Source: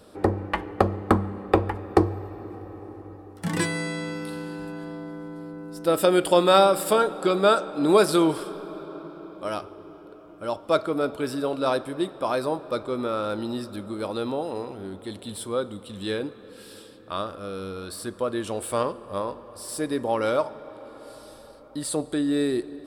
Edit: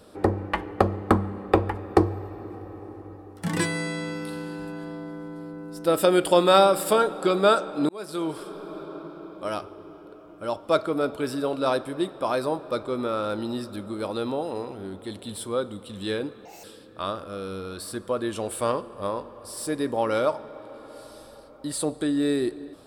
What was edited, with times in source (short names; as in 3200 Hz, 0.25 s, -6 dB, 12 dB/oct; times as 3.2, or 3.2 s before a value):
7.89–8.79 fade in linear
16.45–16.75 speed 161%